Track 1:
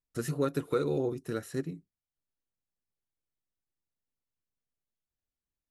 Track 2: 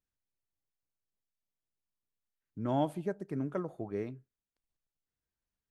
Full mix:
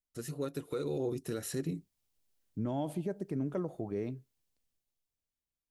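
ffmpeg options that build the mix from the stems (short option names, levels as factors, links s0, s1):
-filter_complex "[0:a]equalizer=f=160:w=0.3:g=-4,volume=0.631[s0];[1:a]volume=0.316[s1];[s0][s1]amix=inputs=2:normalize=0,equalizer=f=1400:w=1:g=-7,dynaudnorm=f=230:g=11:m=5.62,alimiter=level_in=1.26:limit=0.0631:level=0:latency=1:release=75,volume=0.794"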